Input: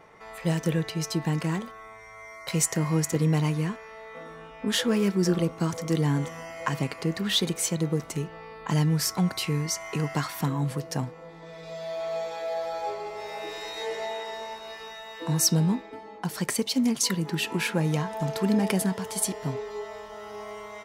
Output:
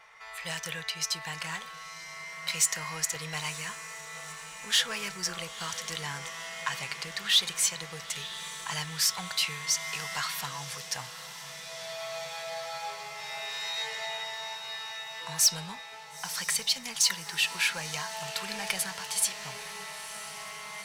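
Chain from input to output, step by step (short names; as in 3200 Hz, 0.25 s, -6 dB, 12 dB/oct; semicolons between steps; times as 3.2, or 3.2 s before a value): overdrive pedal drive 13 dB, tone 5000 Hz, clips at -8 dBFS; passive tone stack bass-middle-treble 10-0-10; diffused feedback echo 0.959 s, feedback 72%, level -14 dB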